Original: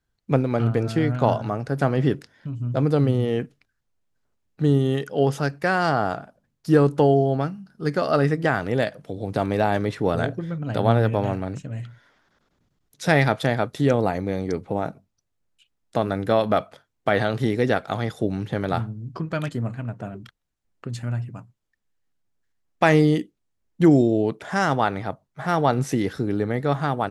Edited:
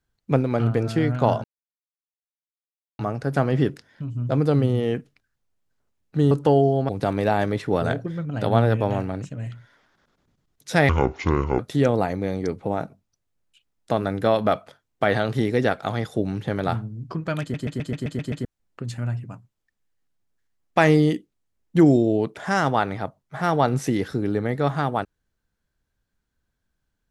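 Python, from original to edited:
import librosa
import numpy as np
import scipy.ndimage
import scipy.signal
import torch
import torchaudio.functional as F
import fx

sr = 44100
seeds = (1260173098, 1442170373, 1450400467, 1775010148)

y = fx.edit(x, sr, fx.insert_silence(at_s=1.44, length_s=1.55),
    fx.cut(start_s=4.76, length_s=2.08),
    fx.cut(start_s=7.42, length_s=1.8),
    fx.speed_span(start_s=13.22, length_s=0.42, speed=0.6),
    fx.stutter_over(start_s=19.46, slice_s=0.13, count=8), tone=tone)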